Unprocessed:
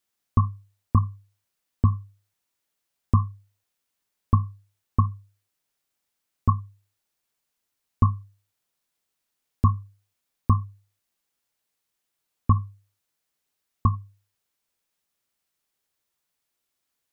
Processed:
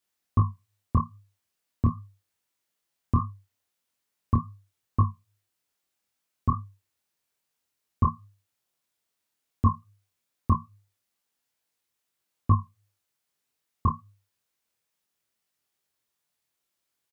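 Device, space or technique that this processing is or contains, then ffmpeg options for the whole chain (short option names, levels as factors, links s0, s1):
double-tracked vocal: -filter_complex "[0:a]highpass=49,asplit=2[s0][s1];[s1]adelay=26,volume=0.398[s2];[s0][s2]amix=inputs=2:normalize=0,flanger=delay=20:depth=5.6:speed=2.4,volume=1.19"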